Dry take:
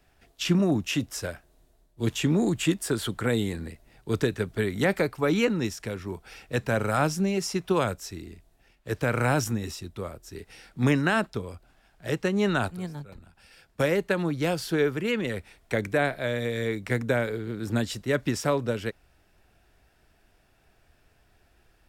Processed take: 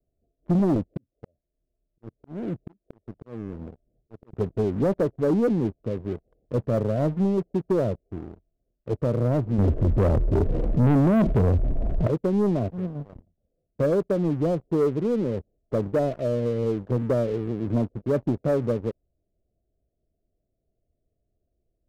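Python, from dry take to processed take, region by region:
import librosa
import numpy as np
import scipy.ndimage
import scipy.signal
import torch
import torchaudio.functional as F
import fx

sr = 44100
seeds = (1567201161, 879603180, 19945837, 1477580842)

y = fx.chain(x, sr, fx.auto_swell(attack_ms=735.0),
    fx.doppler_dist(depth_ms=0.96), at=(0.75, 4.33))
y = fx.chain(y, sr, fx.tilt_eq(slope=-2.0),
    fx.env_flatten(amount_pct=70), at=(9.58, 12.07))
y = scipy.signal.sosfilt(scipy.signal.butter(16, 680.0, 'lowpass', fs=sr, output='sos'), y)
y = fx.leveller(y, sr, passes=3)
y = F.gain(torch.from_numpy(y), -6.5).numpy()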